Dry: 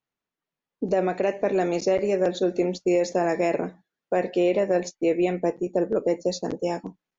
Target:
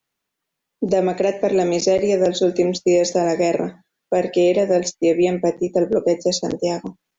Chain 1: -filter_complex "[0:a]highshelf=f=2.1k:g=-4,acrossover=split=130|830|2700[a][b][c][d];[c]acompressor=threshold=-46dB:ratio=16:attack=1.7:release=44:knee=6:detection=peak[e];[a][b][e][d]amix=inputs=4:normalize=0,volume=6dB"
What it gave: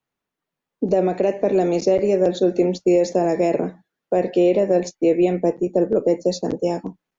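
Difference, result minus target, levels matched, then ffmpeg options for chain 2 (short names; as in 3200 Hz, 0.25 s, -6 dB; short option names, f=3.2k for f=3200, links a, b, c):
4000 Hz band -7.5 dB
-filter_complex "[0:a]highshelf=f=2.1k:g=6.5,acrossover=split=130|830|2700[a][b][c][d];[c]acompressor=threshold=-46dB:ratio=16:attack=1.7:release=44:knee=6:detection=peak[e];[a][b][e][d]amix=inputs=4:normalize=0,volume=6dB"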